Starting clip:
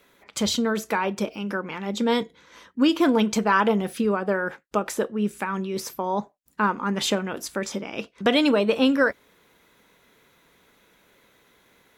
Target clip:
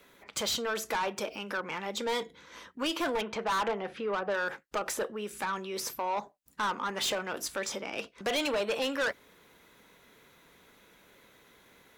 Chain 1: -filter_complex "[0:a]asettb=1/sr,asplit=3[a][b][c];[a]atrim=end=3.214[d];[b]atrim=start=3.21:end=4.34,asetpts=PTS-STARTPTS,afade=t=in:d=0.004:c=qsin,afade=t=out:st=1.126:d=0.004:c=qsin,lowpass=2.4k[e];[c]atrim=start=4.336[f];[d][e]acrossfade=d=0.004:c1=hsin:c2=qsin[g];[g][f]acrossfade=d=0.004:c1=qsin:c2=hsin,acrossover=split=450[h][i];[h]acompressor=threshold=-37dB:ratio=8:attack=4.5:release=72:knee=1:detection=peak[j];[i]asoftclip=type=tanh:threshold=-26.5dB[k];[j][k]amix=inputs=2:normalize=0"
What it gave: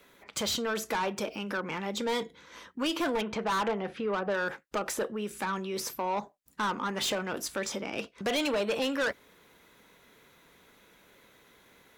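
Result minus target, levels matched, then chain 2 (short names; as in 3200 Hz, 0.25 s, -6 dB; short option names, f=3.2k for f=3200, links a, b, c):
compressor: peak gain reduction -7.5 dB
-filter_complex "[0:a]asettb=1/sr,asplit=3[a][b][c];[a]atrim=end=3.214[d];[b]atrim=start=3.21:end=4.34,asetpts=PTS-STARTPTS,afade=t=in:d=0.004:c=qsin,afade=t=out:st=1.126:d=0.004:c=qsin,lowpass=2.4k[e];[c]atrim=start=4.336[f];[d][e]acrossfade=d=0.004:c1=hsin:c2=qsin[g];[g][f]acrossfade=d=0.004:c1=qsin:c2=hsin,acrossover=split=450[h][i];[h]acompressor=threshold=-45.5dB:ratio=8:attack=4.5:release=72:knee=1:detection=peak[j];[i]asoftclip=type=tanh:threshold=-26.5dB[k];[j][k]amix=inputs=2:normalize=0"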